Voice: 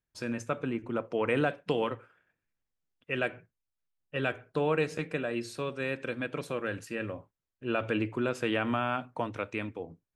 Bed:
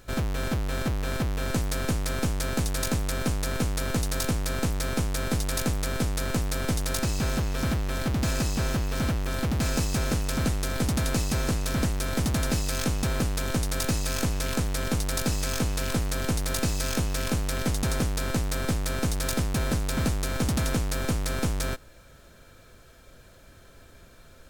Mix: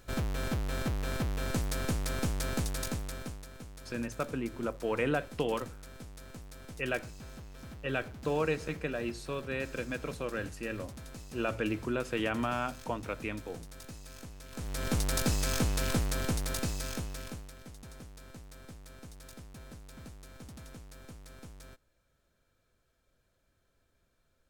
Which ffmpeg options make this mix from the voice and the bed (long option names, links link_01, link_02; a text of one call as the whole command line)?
ffmpeg -i stem1.wav -i stem2.wav -filter_complex "[0:a]adelay=3700,volume=-2.5dB[link_01];[1:a]volume=13dB,afade=type=out:start_time=2.53:duration=0.95:silence=0.16788,afade=type=in:start_time=14.51:duration=0.49:silence=0.125893,afade=type=out:start_time=15.9:duration=1.65:silence=0.1[link_02];[link_01][link_02]amix=inputs=2:normalize=0" out.wav